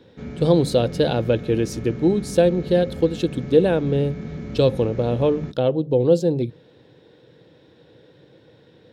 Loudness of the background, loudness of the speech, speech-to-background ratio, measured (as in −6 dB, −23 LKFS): −34.0 LKFS, −20.5 LKFS, 13.5 dB